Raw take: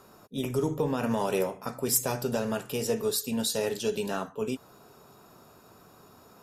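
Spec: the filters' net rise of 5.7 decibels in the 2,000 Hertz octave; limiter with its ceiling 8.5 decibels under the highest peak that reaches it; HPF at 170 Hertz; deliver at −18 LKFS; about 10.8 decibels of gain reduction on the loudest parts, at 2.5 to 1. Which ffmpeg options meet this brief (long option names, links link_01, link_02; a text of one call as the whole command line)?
ffmpeg -i in.wav -af "highpass=170,equalizer=frequency=2000:width_type=o:gain=8,acompressor=threshold=-39dB:ratio=2.5,volume=23dB,alimiter=limit=-8dB:level=0:latency=1" out.wav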